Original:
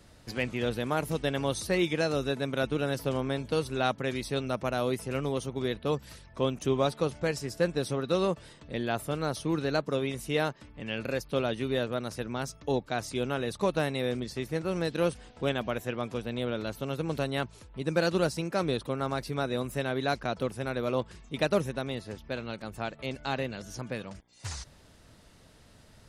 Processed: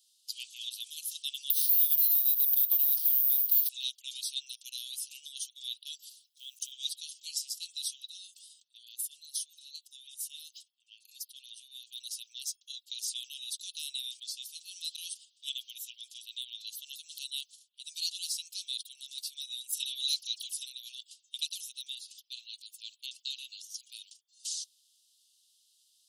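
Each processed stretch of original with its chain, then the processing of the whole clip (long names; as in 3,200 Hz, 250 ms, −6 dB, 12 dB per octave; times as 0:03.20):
0:01.50–0:03.69: variable-slope delta modulation 32 kbit/s + downward compressor 5 to 1, threshold −34 dBFS + bad sample-rate conversion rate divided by 3×, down filtered, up zero stuff
0:06.10–0:06.72: log-companded quantiser 8 bits + downward compressor 2.5 to 1, threshold −33 dBFS
0:08.07–0:11.91: drawn EQ curve 130 Hz 0 dB, 340 Hz −22 dB, 11,000 Hz −6 dB + transient designer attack −1 dB, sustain +6 dB + level that may fall only so fast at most 33 dB per second
0:19.72–0:20.66: tilt shelving filter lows −7 dB, about 1,200 Hz + all-pass dispersion lows, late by 94 ms, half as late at 1,400 Hz
whole clip: noise gate −42 dBFS, range −9 dB; Butterworth high-pass 3,000 Hz 72 dB per octave; spectral tilt +2.5 dB per octave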